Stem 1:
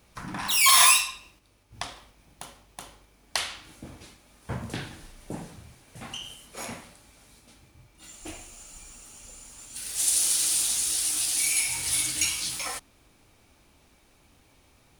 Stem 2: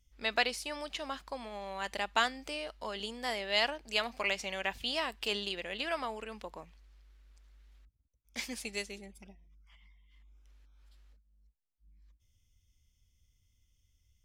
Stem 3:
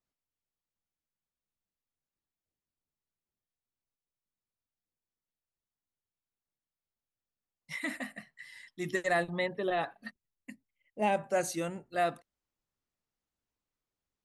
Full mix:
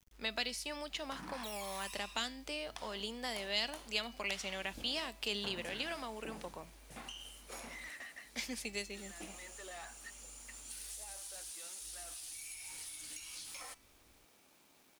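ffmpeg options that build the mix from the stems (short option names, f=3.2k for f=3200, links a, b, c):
-filter_complex "[0:a]acompressor=threshold=-29dB:ratio=6,adelay=950,volume=-5.5dB[a];[1:a]acrossover=split=300|3000[b][c][d];[c]acompressor=threshold=-39dB:ratio=6[e];[b][e][d]amix=inputs=3:normalize=0,volume=-1dB,asplit=2[f][g];[2:a]highpass=f=1.4k:p=1,asplit=2[h][i];[i]highpass=f=720:p=1,volume=28dB,asoftclip=type=tanh:threshold=-20dB[j];[h][j]amix=inputs=2:normalize=0,lowpass=f=5.4k:p=1,volume=-6dB,volume=-18dB[k];[g]apad=whole_len=628225[l];[k][l]sidechaincompress=threshold=-55dB:ratio=4:attack=16:release=657[m];[a][m]amix=inputs=2:normalize=0,highpass=220,acompressor=threshold=-44dB:ratio=12,volume=0dB[n];[f][n]amix=inputs=2:normalize=0,bandreject=f=328.2:t=h:w=4,bandreject=f=656.4:t=h:w=4,bandreject=f=984.6:t=h:w=4,bandreject=f=1.3128k:t=h:w=4,bandreject=f=1.641k:t=h:w=4,bandreject=f=1.9692k:t=h:w=4,bandreject=f=2.2974k:t=h:w=4,bandreject=f=2.6256k:t=h:w=4,bandreject=f=2.9538k:t=h:w=4,bandreject=f=3.282k:t=h:w=4,bandreject=f=3.6102k:t=h:w=4,bandreject=f=3.9384k:t=h:w=4,bandreject=f=4.2666k:t=h:w=4,bandreject=f=4.5948k:t=h:w=4,bandreject=f=4.923k:t=h:w=4,bandreject=f=5.2512k:t=h:w=4,bandreject=f=5.5794k:t=h:w=4,bandreject=f=5.9076k:t=h:w=4,bandreject=f=6.2358k:t=h:w=4,bandreject=f=6.564k:t=h:w=4,bandreject=f=6.8922k:t=h:w=4,bandreject=f=7.2204k:t=h:w=4,bandreject=f=7.5486k:t=h:w=4,bandreject=f=7.8768k:t=h:w=4,bandreject=f=8.205k:t=h:w=4,bandreject=f=8.5332k:t=h:w=4,bandreject=f=8.8614k:t=h:w=4,acrusher=bits=10:mix=0:aa=0.000001"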